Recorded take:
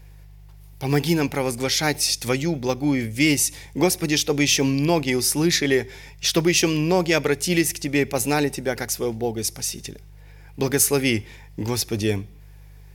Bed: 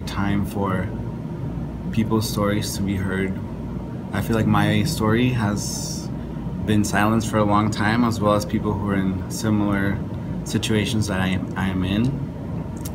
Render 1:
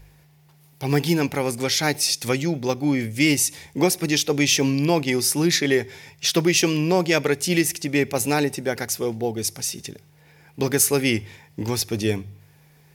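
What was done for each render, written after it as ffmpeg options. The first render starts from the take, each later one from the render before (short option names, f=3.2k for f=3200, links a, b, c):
-af "bandreject=f=50:t=h:w=4,bandreject=f=100:t=h:w=4"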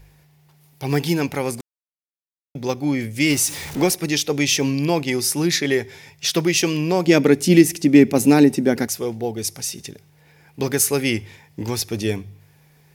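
-filter_complex "[0:a]asettb=1/sr,asplit=3[a][b][c];[a]atrim=end=3.304[d];[b]atrim=start=3.3:end=3.95,asetpts=PTS-STARTPTS,afade=t=in:d=0.004:c=qsin,afade=t=out:st=0.646:d=0.004:c=qsin,aeval=exprs='val(0)+0.5*0.0376*sgn(val(0))':c=same[e];[c]atrim=start=3.946[f];[d][e]acrossfade=d=0.004:c1=hsin:c2=qsin[g];[g][f]acrossfade=d=0.004:c1=qsin:c2=hsin,asettb=1/sr,asplit=3[h][i][j];[h]atrim=end=7.074[k];[i]atrim=start=7.07:end=8.87,asetpts=PTS-STARTPTS,afade=t=in:d=0.004:c=qsin,afade=t=out:st=1.796:d=0.004:c=qsin,equalizer=f=250:w=1.1:g=14[l];[j]atrim=start=8.866[m];[k][l]acrossfade=d=0.004:c1=hsin:c2=qsin[n];[n][m]acrossfade=d=0.004:c1=qsin:c2=hsin,asplit=3[o][p][q];[o]atrim=end=1.61,asetpts=PTS-STARTPTS,afade=t=out:st=1.606:d=0.004:c=hsin[r];[p]atrim=start=1.61:end=2.55,asetpts=PTS-STARTPTS,volume=0[s];[q]atrim=start=2.55,asetpts=PTS-STARTPTS,afade=t=in:d=0.004:c=hsin[t];[r][s][t]concat=n=3:v=0:a=1"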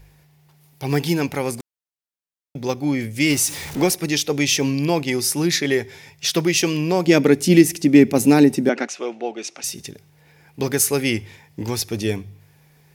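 -filter_complex "[0:a]asettb=1/sr,asplit=3[a][b][c];[a]atrim=end=8.694[d];[b]atrim=start=8.69:end=9.64,asetpts=PTS-STARTPTS,afade=t=in:d=0.004:c=qsin,afade=t=out:st=0.946:d=0.004:c=qsin,highpass=f=270:w=0.5412,highpass=f=270:w=1.3066,equalizer=f=440:t=q:w=4:g=-5,equalizer=f=630:t=q:w=4:g=5,equalizer=f=1.3k:t=q:w=4:g=6,equalizer=f=2.6k:t=q:w=4:g=9,equalizer=f=4.9k:t=q:w=4:g=-7,lowpass=f=6.3k:w=0.5412,lowpass=f=6.3k:w=1.3066[e];[c]atrim=start=9.636[f];[d][e]acrossfade=d=0.004:c1=hsin:c2=qsin[g];[g][f]acrossfade=d=0.004:c1=qsin:c2=hsin"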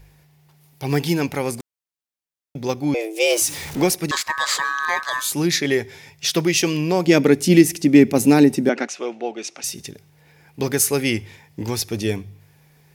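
-filter_complex "[0:a]asettb=1/sr,asplit=3[a][b][c];[a]atrim=end=2.944[d];[b]atrim=start=2.94:end=3.42,asetpts=PTS-STARTPTS,afade=t=in:d=0.004:c=qsin,afade=t=out:st=0.476:d=0.004:c=qsin,afreqshift=220[e];[c]atrim=start=3.416[f];[d][e]acrossfade=d=0.004:c1=hsin:c2=qsin[g];[g][f]acrossfade=d=0.004:c1=qsin:c2=hsin,asettb=1/sr,asplit=3[h][i][j];[h]atrim=end=4.114[k];[i]atrim=start=4.11:end=5.33,asetpts=PTS-STARTPTS,afade=t=in:d=0.004:c=qsin,afade=t=out:st=1.216:d=0.004:c=qsin,aeval=exprs='val(0)*sin(2*PI*1400*n/s)':c=same[l];[j]atrim=start=5.326[m];[k][l]acrossfade=d=0.004:c1=hsin:c2=qsin[n];[n][m]acrossfade=d=0.004:c1=qsin:c2=hsin"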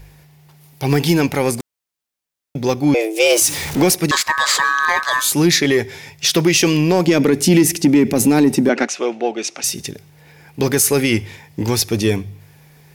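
-af "alimiter=limit=-10.5dB:level=0:latency=1:release=34,acontrast=85"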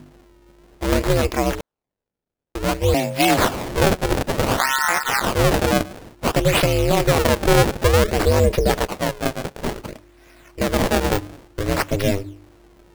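-af "acrusher=samples=27:mix=1:aa=0.000001:lfo=1:lforange=43.2:lforate=0.56,aeval=exprs='val(0)*sin(2*PI*200*n/s)':c=same"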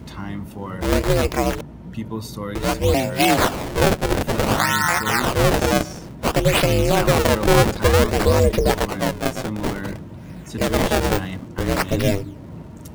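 -filter_complex "[1:a]volume=-8.5dB[a];[0:a][a]amix=inputs=2:normalize=0"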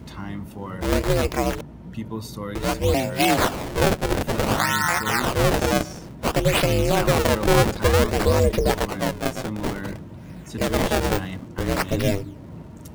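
-af "volume=-2.5dB"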